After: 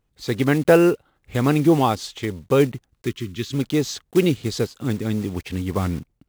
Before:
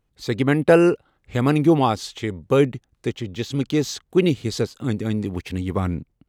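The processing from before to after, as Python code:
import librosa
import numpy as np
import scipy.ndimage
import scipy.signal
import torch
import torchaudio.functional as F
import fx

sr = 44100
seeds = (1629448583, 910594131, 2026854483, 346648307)

y = fx.block_float(x, sr, bits=5)
y = fx.spec_box(y, sr, start_s=3.06, length_s=0.47, low_hz=410.0, high_hz=1000.0, gain_db=-16)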